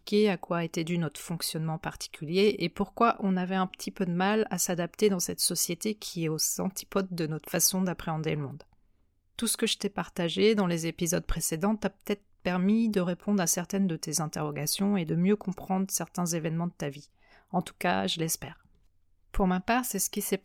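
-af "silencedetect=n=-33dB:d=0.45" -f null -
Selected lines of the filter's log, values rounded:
silence_start: 8.61
silence_end: 9.39 | silence_duration: 0.78
silence_start: 16.91
silence_end: 17.54 | silence_duration: 0.63
silence_start: 18.48
silence_end: 19.34 | silence_duration: 0.87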